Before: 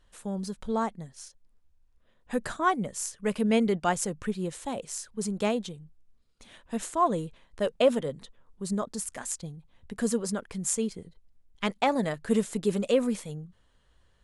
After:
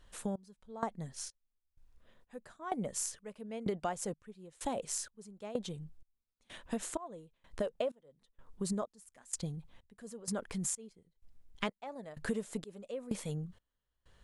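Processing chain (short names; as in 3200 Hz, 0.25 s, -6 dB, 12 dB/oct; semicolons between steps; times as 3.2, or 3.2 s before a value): dynamic EQ 630 Hz, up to +6 dB, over -37 dBFS, Q 1; step gate "xxx....x" 127 bpm -24 dB; compressor 10:1, threshold -35 dBFS, peak gain reduction 23.5 dB; 9.98–10.92 transient shaper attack -3 dB, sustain +3 dB; gain +2.5 dB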